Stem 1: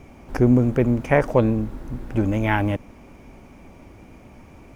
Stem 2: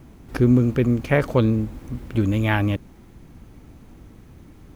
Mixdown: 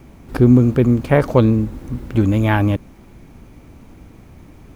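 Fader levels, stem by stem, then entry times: -5.0 dB, +2.5 dB; 0.00 s, 0.00 s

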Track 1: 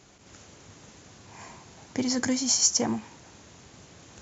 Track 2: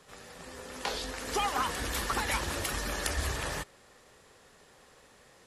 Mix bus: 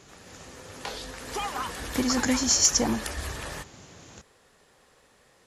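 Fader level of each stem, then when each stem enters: +1.5 dB, -2.0 dB; 0.00 s, 0.00 s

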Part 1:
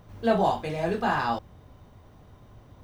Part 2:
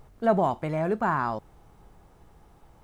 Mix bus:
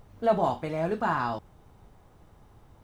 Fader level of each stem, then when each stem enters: -8.0 dB, -3.0 dB; 0.00 s, 0.00 s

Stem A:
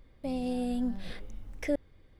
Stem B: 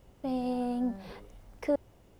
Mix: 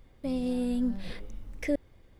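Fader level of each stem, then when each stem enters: +1.0 dB, -8.5 dB; 0.00 s, 0.00 s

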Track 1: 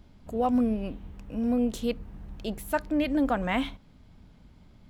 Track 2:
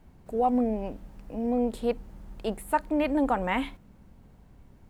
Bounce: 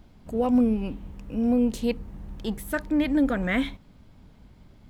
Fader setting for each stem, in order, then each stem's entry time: +1.0 dB, -3.5 dB; 0.00 s, 0.00 s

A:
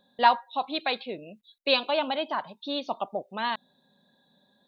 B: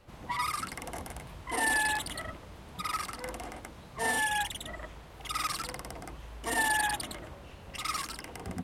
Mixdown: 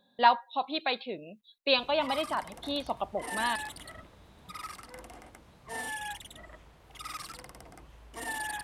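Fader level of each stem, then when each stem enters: -2.0 dB, -8.0 dB; 0.00 s, 1.70 s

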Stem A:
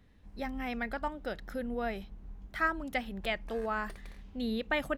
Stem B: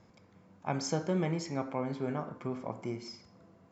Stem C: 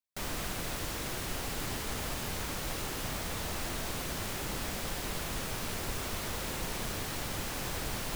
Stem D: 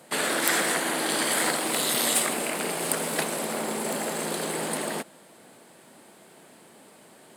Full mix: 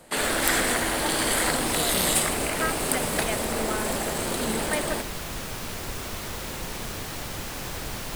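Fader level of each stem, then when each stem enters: 0.0 dB, -5.0 dB, +2.5 dB, +0.5 dB; 0.00 s, 0.85 s, 0.00 s, 0.00 s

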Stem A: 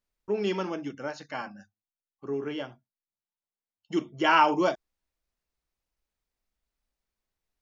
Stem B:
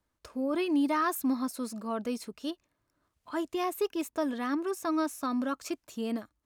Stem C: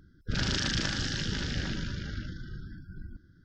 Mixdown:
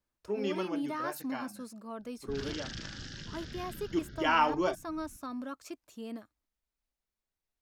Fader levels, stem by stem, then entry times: -5.5 dB, -8.5 dB, -12.0 dB; 0.00 s, 0.00 s, 2.00 s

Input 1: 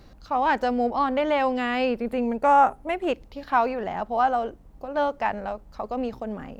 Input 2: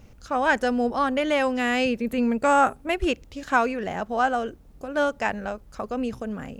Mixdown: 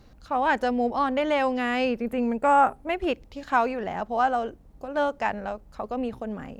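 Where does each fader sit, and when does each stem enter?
-4.5 dB, -10.0 dB; 0.00 s, 0.00 s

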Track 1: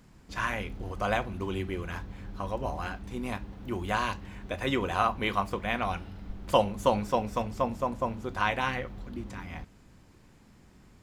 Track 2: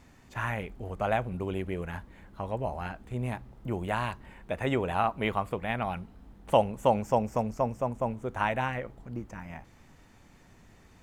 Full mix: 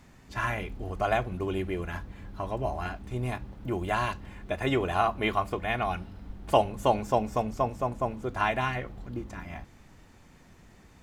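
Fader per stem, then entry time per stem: -4.0 dB, +0.5 dB; 0.00 s, 0.00 s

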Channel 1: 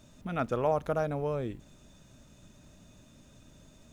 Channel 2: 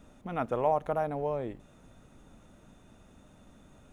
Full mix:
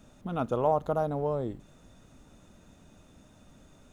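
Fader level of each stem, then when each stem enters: -4.5 dB, -1.5 dB; 0.00 s, 0.00 s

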